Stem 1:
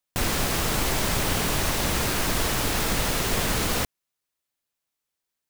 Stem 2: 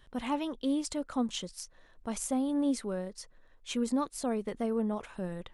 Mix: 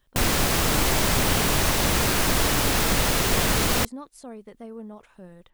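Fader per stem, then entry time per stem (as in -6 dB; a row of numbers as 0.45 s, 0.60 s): +3.0 dB, -8.0 dB; 0.00 s, 0.00 s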